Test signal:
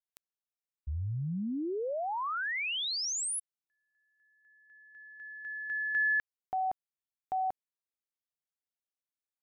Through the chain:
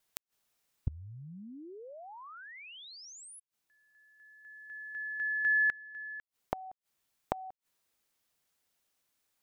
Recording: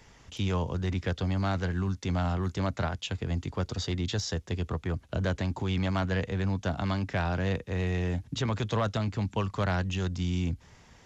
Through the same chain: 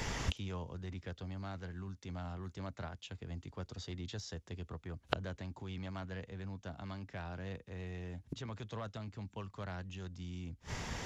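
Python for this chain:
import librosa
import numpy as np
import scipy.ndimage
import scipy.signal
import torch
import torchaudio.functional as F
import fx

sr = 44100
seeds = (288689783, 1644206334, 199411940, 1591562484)

y = fx.rider(x, sr, range_db=4, speed_s=2.0)
y = fx.gate_flip(y, sr, shuts_db=-35.0, range_db=-29)
y = y * librosa.db_to_amplitude(14.5)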